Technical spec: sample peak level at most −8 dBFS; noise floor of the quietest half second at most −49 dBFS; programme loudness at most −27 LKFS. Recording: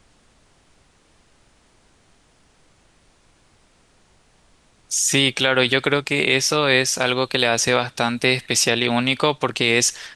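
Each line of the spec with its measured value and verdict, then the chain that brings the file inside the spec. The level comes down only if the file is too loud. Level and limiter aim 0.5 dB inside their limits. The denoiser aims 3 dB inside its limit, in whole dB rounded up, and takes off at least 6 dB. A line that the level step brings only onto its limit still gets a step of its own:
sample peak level −3.5 dBFS: out of spec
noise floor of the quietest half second −57 dBFS: in spec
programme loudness −18.5 LKFS: out of spec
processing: level −9 dB

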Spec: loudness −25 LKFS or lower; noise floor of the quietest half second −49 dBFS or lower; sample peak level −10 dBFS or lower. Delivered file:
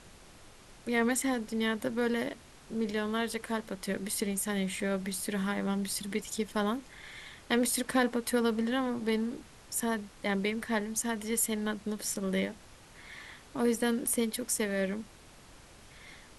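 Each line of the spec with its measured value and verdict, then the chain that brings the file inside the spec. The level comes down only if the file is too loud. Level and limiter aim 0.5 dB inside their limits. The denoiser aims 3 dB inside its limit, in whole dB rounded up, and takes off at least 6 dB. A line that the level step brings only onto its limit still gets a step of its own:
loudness −32.0 LKFS: in spec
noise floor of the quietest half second −54 dBFS: in spec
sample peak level −13.5 dBFS: in spec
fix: no processing needed

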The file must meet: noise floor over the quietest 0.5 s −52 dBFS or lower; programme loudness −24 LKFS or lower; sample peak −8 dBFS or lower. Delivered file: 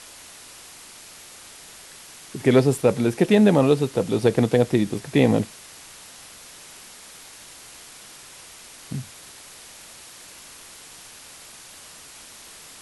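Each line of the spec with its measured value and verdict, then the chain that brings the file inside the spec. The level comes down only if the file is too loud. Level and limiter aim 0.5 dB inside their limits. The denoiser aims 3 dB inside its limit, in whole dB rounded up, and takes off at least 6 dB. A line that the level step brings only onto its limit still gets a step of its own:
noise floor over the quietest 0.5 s −44 dBFS: out of spec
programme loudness −20.5 LKFS: out of spec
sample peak −5.0 dBFS: out of spec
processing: broadband denoise 7 dB, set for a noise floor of −44 dBFS
level −4 dB

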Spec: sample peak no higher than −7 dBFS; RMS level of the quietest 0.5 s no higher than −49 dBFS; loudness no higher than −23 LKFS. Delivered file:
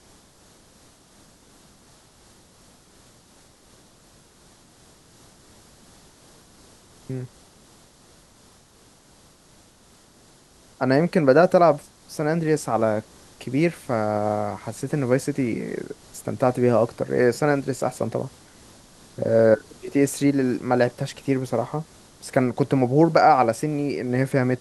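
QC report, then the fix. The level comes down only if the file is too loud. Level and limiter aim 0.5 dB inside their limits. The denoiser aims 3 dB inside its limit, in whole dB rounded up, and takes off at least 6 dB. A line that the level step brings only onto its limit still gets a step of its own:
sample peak −4.5 dBFS: out of spec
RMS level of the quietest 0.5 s −54 dBFS: in spec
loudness −22.0 LKFS: out of spec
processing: level −1.5 dB
brickwall limiter −7.5 dBFS

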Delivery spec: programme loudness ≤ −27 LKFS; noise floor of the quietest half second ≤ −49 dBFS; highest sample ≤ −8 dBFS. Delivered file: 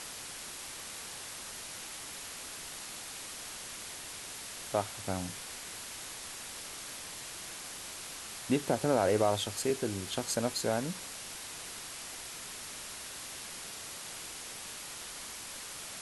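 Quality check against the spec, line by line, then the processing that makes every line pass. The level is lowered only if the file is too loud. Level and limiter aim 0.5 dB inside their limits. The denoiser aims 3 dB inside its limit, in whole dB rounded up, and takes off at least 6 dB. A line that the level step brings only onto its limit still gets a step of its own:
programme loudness −37.0 LKFS: in spec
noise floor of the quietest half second −44 dBFS: out of spec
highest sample −15.0 dBFS: in spec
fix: broadband denoise 8 dB, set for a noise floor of −44 dBFS

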